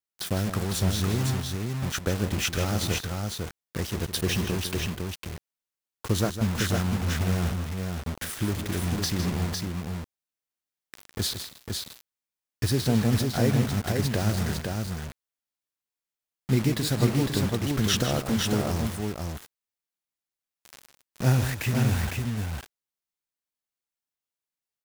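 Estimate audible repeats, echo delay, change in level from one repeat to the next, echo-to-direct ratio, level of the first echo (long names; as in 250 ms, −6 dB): 2, 156 ms, repeats not evenly spaced, −3.0 dB, −10.0 dB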